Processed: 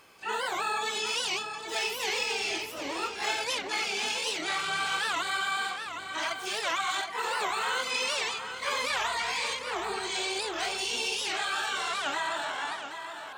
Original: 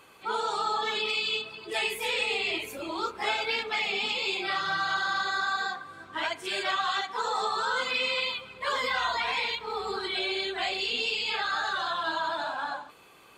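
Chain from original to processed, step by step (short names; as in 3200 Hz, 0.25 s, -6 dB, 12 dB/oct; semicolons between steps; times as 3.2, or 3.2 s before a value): tape echo 0.771 s, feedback 41%, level -7.5 dB, low-pass 4600 Hz; harmoniser +12 st -5 dB; record warp 78 rpm, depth 250 cents; gain -3 dB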